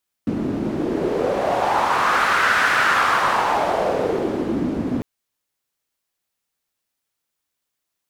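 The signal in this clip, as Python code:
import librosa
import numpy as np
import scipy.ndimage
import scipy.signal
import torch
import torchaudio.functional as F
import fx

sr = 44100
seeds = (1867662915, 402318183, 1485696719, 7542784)

y = fx.wind(sr, seeds[0], length_s=4.75, low_hz=250.0, high_hz=1500.0, q=2.9, gusts=1, swing_db=6)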